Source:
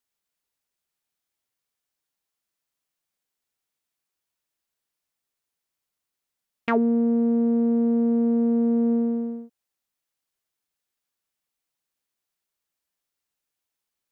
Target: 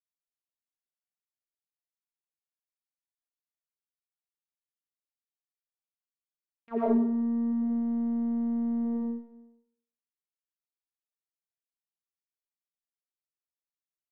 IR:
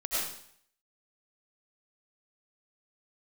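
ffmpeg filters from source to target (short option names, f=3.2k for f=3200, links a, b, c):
-filter_complex "[0:a]agate=range=-27dB:threshold=-19dB:ratio=16:detection=peak,asplit=3[a][b][c];[a]afade=t=out:st=7.51:d=0.02[d];[b]aecho=1:1:7.2:0.63,afade=t=in:st=7.51:d=0.02,afade=t=out:st=8.84:d=0.02[e];[c]afade=t=in:st=8.84:d=0.02[f];[d][e][f]amix=inputs=3:normalize=0[g];[1:a]atrim=start_sample=2205[h];[g][h]afir=irnorm=-1:irlink=0,volume=-3.5dB"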